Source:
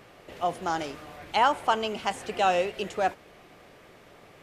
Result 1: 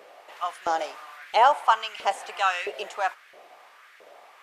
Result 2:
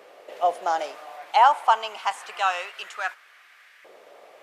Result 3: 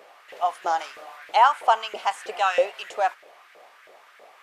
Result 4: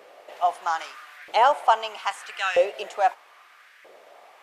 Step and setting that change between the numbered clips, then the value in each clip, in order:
LFO high-pass, rate: 1.5, 0.26, 3.1, 0.78 Hz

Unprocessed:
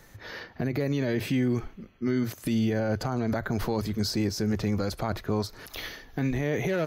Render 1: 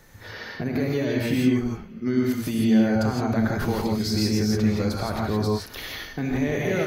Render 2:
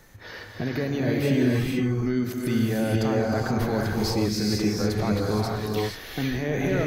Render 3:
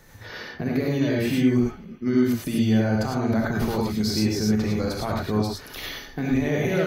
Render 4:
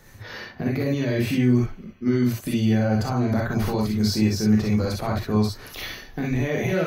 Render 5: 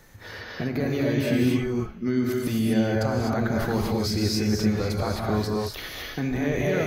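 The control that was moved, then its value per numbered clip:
non-linear reverb, gate: 190, 500, 130, 80, 280 ms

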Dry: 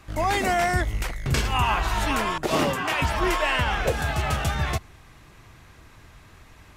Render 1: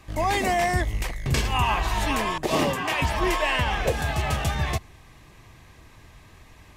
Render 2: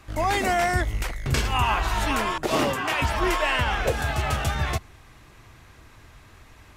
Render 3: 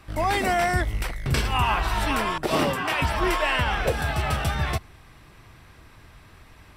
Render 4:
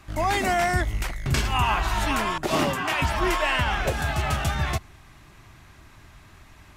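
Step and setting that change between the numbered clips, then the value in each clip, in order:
notch, frequency: 1400, 170, 6700, 480 Hz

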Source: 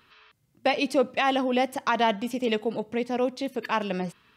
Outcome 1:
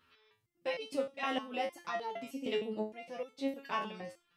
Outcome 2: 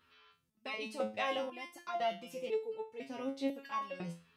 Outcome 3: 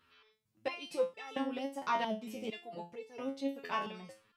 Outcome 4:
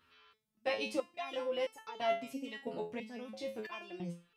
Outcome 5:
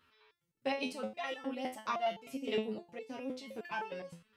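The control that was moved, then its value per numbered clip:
stepped resonator, rate: 6.5, 2, 4.4, 3, 9.7 Hz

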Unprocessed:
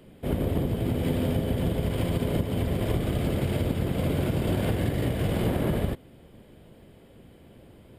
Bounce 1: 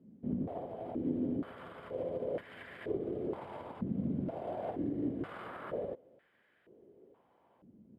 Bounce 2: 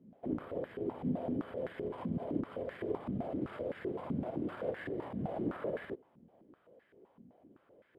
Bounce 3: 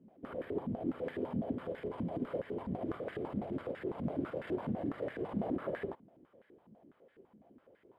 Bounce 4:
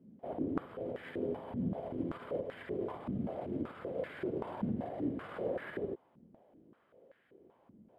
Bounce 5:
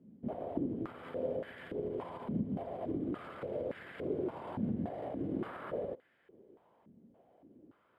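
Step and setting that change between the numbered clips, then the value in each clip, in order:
stepped band-pass, rate: 2.1, 7.8, 12, 5.2, 3.5 Hz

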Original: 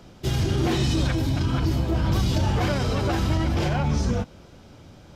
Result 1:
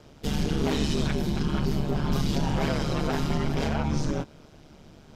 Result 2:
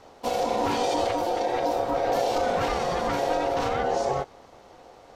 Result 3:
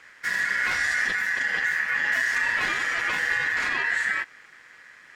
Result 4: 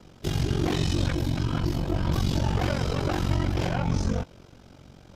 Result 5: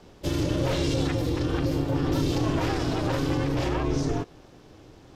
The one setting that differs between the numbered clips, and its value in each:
ring modulator, frequency: 73, 620, 1800, 23, 210 Hz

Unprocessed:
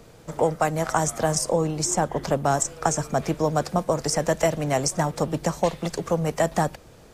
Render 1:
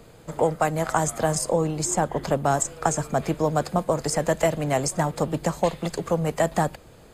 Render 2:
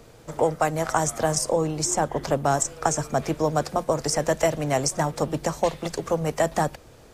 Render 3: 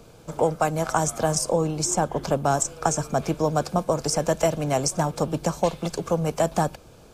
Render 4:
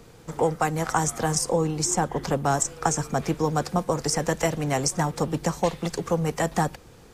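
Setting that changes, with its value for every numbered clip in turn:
notch, frequency: 5700, 180, 1900, 620 Hz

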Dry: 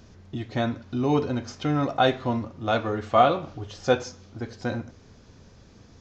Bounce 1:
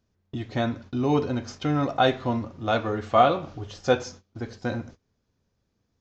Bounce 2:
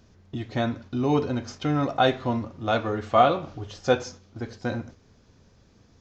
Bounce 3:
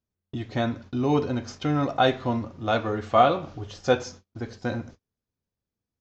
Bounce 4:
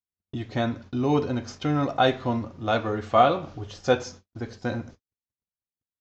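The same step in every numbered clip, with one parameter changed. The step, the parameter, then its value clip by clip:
gate, range: -23, -6, -37, -57 dB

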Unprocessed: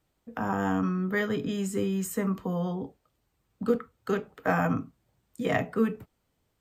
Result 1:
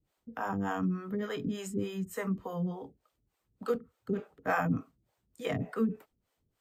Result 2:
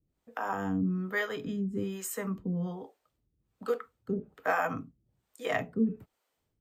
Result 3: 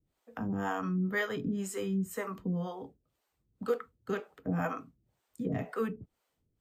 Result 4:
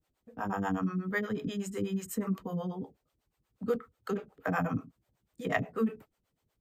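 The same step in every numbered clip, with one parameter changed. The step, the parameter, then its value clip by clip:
harmonic tremolo, rate: 3.4, 1.2, 2, 8.2 Hz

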